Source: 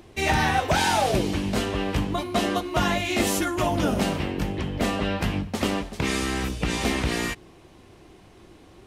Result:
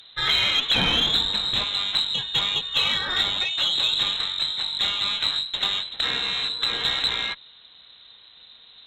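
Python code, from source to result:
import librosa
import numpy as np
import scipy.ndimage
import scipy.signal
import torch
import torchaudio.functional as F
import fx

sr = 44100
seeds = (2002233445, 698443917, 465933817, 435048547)

y = fx.freq_invert(x, sr, carrier_hz=4000)
y = fx.low_shelf(y, sr, hz=400.0, db=10.5, at=(0.75, 1.64))
y = fx.cheby_harmonics(y, sr, harmonics=(6,), levels_db=(-30,), full_scale_db=-8.0)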